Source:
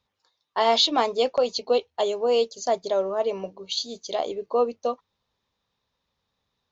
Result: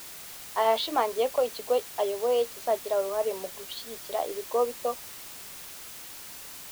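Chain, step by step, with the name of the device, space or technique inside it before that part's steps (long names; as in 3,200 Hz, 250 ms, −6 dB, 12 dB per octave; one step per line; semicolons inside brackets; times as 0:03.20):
wax cylinder (band-pass filter 340–2,400 Hz; tape wow and flutter; white noise bed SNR 13 dB)
level −2.5 dB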